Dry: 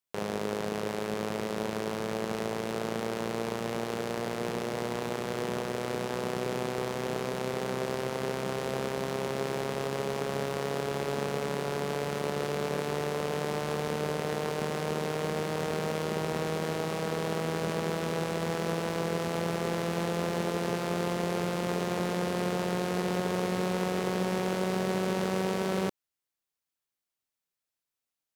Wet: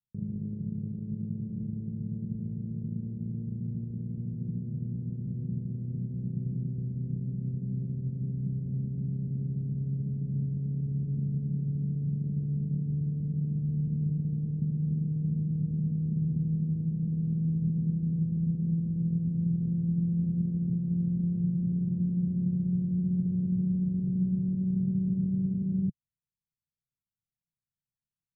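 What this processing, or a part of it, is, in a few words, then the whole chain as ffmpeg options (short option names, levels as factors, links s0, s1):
the neighbour's flat through the wall: -af "lowpass=f=190:w=0.5412,lowpass=f=190:w=1.3066,equalizer=f=140:t=o:w=0.92:g=7,volume=1.68"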